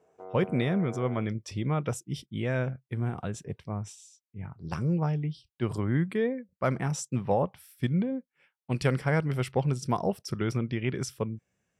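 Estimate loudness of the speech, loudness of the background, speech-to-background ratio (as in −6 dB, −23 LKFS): −30.5 LKFS, −43.0 LKFS, 12.5 dB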